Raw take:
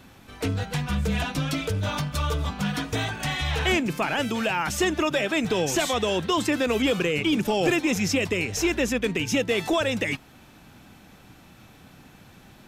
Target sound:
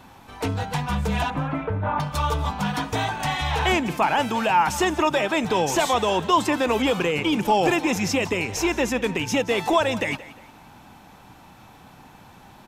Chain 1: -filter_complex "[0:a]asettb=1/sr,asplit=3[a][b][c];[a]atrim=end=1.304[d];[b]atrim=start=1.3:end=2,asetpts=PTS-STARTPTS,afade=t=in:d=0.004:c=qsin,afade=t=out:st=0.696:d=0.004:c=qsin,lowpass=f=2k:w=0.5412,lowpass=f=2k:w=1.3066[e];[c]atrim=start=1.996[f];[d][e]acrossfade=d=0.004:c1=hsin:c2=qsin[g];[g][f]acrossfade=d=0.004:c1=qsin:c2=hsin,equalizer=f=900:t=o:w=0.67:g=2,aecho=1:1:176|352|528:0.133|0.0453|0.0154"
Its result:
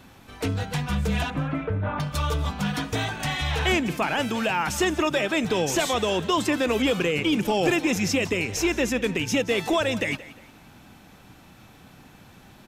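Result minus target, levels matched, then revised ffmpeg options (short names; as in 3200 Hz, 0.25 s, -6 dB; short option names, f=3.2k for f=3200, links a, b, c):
1000 Hz band -5.0 dB
-filter_complex "[0:a]asettb=1/sr,asplit=3[a][b][c];[a]atrim=end=1.304[d];[b]atrim=start=1.3:end=2,asetpts=PTS-STARTPTS,afade=t=in:d=0.004:c=qsin,afade=t=out:st=0.696:d=0.004:c=qsin,lowpass=f=2k:w=0.5412,lowpass=f=2k:w=1.3066[e];[c]atrim=start=1.996[f];[d][e]acrossfade=d=0.004:c1=hsin:c2=qsin[g];[g][f]acrossfade=d=0.004:c1=qsin:c2=hsin,equalizer=f=900:t=o:w=0.67:g=11.5,aecho=1:1:176|352|528:0.133|0.0453|0.0154"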